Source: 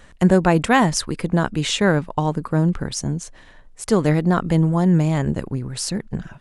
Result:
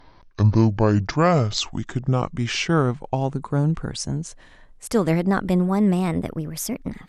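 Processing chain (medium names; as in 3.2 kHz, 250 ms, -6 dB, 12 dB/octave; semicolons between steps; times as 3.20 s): gliding tape speed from 53% -> 128%; trim -2.5 dB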